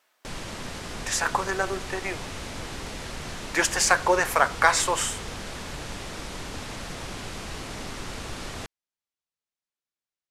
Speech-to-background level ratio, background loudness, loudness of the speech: 12.0 dB, -36.0 LUFS, -24.0 LUFS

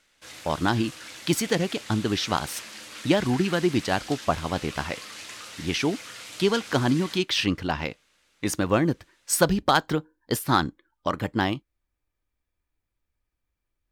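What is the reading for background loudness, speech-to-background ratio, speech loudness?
-39.5 LUFS, 13.5 dB, -26.0 LUFS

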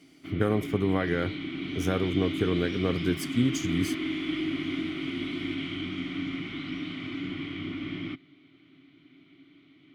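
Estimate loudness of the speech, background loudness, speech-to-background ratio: -29.0 LUFS, -33.5 LUFS, 4.5 dB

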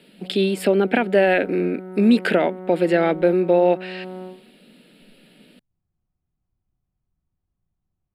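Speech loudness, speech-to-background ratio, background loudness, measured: -19.5 LUFS, 17.0 dB, -36.5 LUFS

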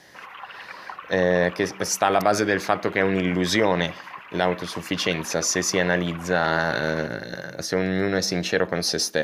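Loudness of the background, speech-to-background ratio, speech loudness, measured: -39.5 LUFS, 16.0 dB, -23.5 LUFS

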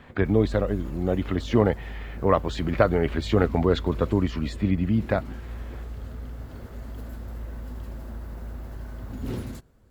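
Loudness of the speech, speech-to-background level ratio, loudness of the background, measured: -25.0 LUFS, 12.5 dB, -37.5 LUFS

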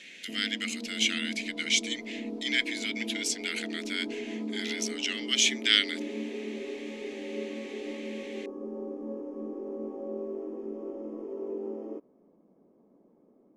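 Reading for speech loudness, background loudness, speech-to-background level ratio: -29.0 LUFS, -38.0 LUFS, 9.0 dB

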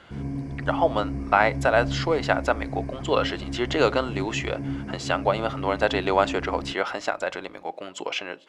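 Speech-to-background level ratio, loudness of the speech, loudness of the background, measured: 7.5 dB, -25.5 LUFS, -33.0 LUFS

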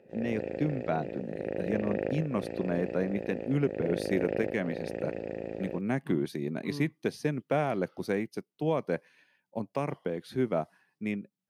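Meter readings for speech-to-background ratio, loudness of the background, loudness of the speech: 3.5 dB, -36.5 LUFS, -33.0 LUFS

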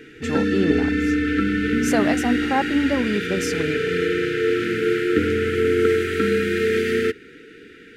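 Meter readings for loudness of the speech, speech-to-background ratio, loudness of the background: -25.0 LUFS, -3.5 dB, -21.5 LUFS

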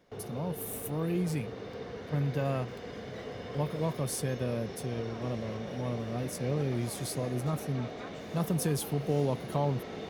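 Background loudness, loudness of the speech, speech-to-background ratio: -42.0 LUFS, -34.0 LUFS, 8.0 dB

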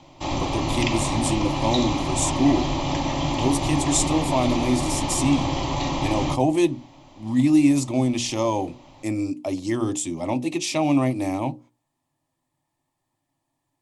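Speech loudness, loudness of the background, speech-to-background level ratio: -24.0 LUFS, -25.5 LUFS, 1.5 dB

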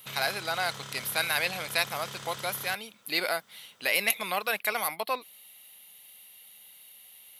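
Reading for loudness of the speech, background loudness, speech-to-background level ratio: -29.5 LUFS, -41.5 LUFS, 12.0 dB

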